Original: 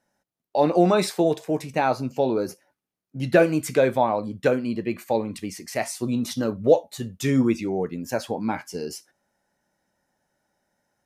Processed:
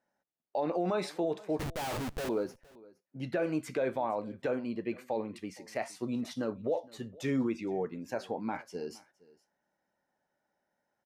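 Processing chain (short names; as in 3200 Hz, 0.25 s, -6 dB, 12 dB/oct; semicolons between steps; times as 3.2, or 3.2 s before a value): LPF 2100 Hz 6 dB/oct; low shelf 180 Hz -11.5 dB; limiter -17.5 dBFS, peak gain reduction 10 dB; 1.59–2.29 Schmitt trigger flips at -41 dBFS; echo 0.465 s -23 dB; gain -5 dB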